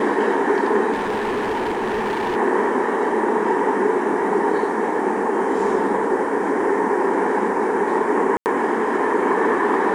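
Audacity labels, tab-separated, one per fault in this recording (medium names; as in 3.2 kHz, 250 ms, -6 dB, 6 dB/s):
0.920000	2.370000	clipped -19.5 dBFS
8.370000	8.460000	dropout 89 ms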